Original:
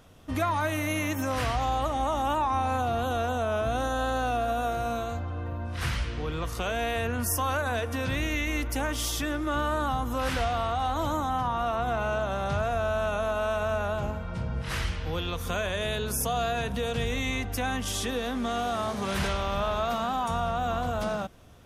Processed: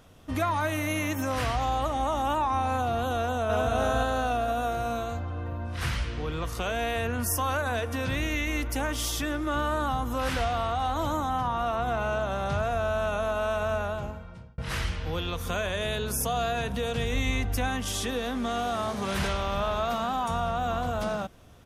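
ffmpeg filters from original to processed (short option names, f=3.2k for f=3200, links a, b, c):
-filter_complex "[0:a]asplit=2[a][b];[b]afade=t=in:st=3.2:d=0.01,afade=t=out:st=3.74:d=0.01,aecho=0:1:290|580|870|1160|1450:0.841395|0.336558|0.134623|0.0538493|0.0215397[c];[a][c]amix=inputs=2:normalize=0,asettb=1/sr,asplit=3[d][e][f];[d]atrim=end=17.134[g];[e]atrim=start=17.13:end=17.68,asetpts=PTS-STARTPTS,afade=t=in:d=0.004:c=qsin,afade=t=out:st=0.546:d=0.004:c=qsin,lowshelf=f=86:g=9[h];[f]atrim=start=17.676[i];[g][h]acrossfade=d=0.004:c1=hsin:c2=qsin[j];[j][i]acrossfade=d=0.004:c1=qsin:c2=hsin,asplit=2[k][l];[k]atrim=end=14.58,asetpts=PTS-STARTPTS,afade=t=out:st=13.75:d=0.83[m];[l]atrim=start=14.58,asetpts=PTS-STARTPTS,afade=t=in:d=0.004:c=hsin[n];[m][n]concat=n=2:v=0:a=1"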